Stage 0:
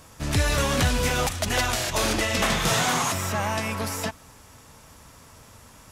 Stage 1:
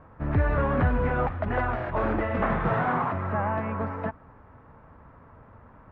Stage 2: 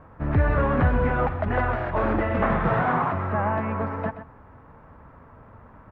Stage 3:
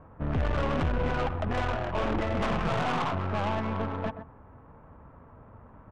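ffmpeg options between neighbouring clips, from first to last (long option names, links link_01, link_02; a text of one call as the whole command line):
ffmpeg -i in.wav -af "lowpass=frequency=1600:width=0.5412,lowpass=frequency=1600:width=1.3066" out.wav
ffmpeg -i in.wav -af "aecho=1:1:127:0.251,volume=2.5dB" out.wav
ffmpeg -i in.wav -af "aeval=exprs='(tanh(15.8*val(0)+0.5)-tanh(0.5))/15.8':channel_layout=same,adynamicsmooth=sensitivity=1.5:basefreq=1800,aexciter=amount=2:drive=5:freq=2500" out.wav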